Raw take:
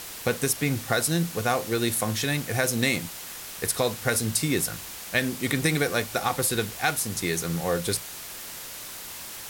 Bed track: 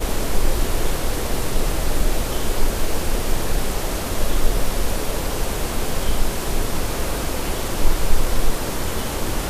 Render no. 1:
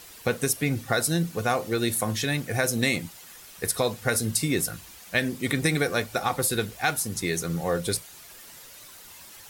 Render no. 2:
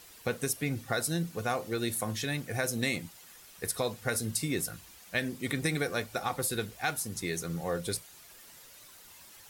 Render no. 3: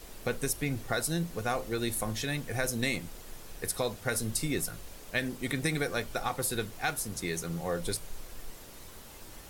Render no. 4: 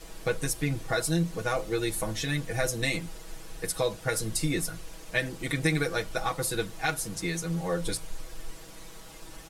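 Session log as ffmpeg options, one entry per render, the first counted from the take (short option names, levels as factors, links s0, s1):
-af "afftdn=nr=10:nf=-39"
-af "volume=0.473"
-filter_complex "[1:a]volume=0.0473[s0];[0:a][s0]amix=inputs=2:normalize=0"
-af "lowpass=11000,aecho=1:1:6.2:0.92"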